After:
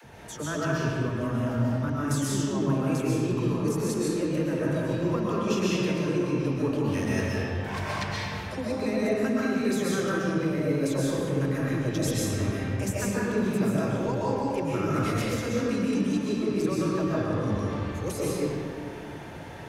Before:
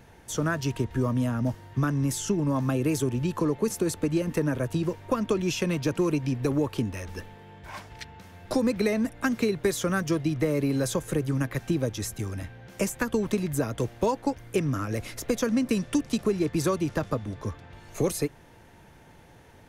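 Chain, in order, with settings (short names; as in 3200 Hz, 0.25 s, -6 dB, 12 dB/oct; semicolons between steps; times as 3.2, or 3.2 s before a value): HPF 66 Hz; high shelf 9300 Hz -6 dB; reverse; compressor 12:1, threshold -35 dBFS, peak gain reduction 16 dB; reverse; dispersion lows, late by 45 ms, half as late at 320 Hz; reverb RT60 2.4 s, pre-delay 90 ms, DRR -7 dB; gain +5 dB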